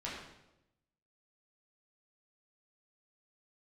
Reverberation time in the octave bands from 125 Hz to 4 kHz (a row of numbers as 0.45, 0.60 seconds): 1.2, 1.1, 1.0, 0.85, 0.75, 0.75 seconds